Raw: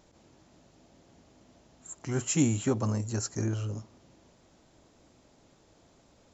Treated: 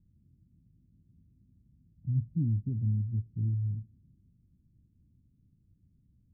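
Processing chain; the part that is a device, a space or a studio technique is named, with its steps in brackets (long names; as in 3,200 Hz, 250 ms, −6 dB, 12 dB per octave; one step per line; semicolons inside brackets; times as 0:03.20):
the neighbour's flat through the wall (low-pass filter 190 Hz 24 dB per octave; parametric band 90 Hz +4 dB)
0:01.95–0:02.35: comb filter 1.3 ms, depth 77%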